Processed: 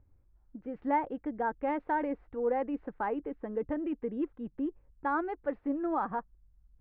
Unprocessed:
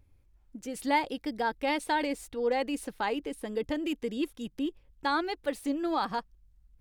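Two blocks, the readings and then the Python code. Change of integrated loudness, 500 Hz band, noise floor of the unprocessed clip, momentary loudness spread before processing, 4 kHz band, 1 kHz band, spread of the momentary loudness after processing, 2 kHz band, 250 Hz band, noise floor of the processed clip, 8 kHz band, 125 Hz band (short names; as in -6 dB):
-2.0 dB, -1.5 dB, -64 dBFS, 7 LU, under -25 dB, -1.5 dB, 7 LU, -6.5 dB, -1.5 dB, -66 dBFS, under -35 dB, -1.5 dB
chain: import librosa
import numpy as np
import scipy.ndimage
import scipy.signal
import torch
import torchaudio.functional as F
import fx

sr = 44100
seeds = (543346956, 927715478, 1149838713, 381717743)

y = scipy.signal.sosfilt(scipy.signal.butter(4, 1600.0, 'lowpass', fs=sr, output='sos'), x)
y = y * librosa.db_to_amplitude(-1.5)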